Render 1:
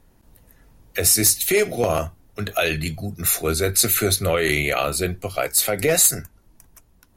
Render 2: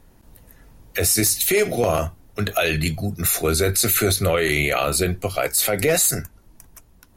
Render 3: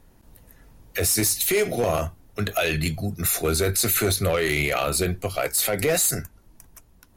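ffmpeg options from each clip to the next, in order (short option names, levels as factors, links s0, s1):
-af "alimiter=limit=0.211:level=0:latency=1:release=33,volume=1.58"
-af "volume=4.47,asoftclip=hard,volume=0.224,volume=0.75"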